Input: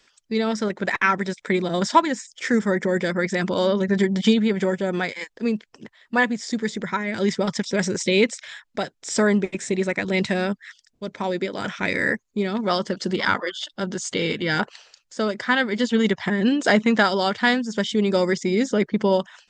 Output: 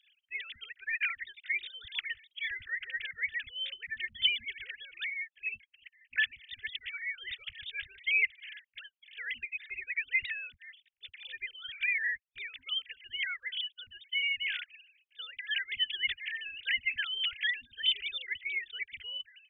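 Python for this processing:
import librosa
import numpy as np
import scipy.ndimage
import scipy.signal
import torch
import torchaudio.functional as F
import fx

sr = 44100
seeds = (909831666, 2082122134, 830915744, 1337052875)

y = fx.sine_speech(x, sr)
y = scipy.signal.sosfilt(scipy.signal.cheby2(4, 50, [190.0, 1100.0], 'bandstop', fs=sr, output='sos'), y)
y = y * 10.0 ** (4.0 / 20.0)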